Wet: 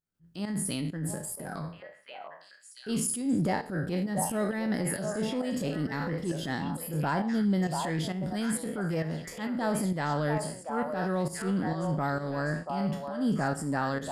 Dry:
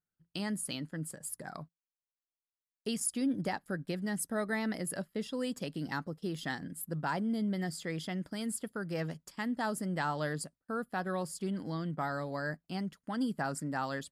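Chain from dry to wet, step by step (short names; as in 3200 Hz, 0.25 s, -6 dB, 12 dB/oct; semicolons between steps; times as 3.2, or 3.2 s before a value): spectral trails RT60 0.40 s; tilt shelf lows +4 dB, about 670 Hz; in parallel at -2 dB: limiter -31.5 dBFS, peak gain reduction 11.5 dB; on the sum: pump 133 bpm, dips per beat 1, -14 dB, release 0.194 s; transient shaper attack -11 dB, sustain +2 dB; on a send: delay with a stepping band-pass 0.686 s, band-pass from 760 Hz, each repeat 1.4 oct, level -1 dB; on the sum: gain +2 dB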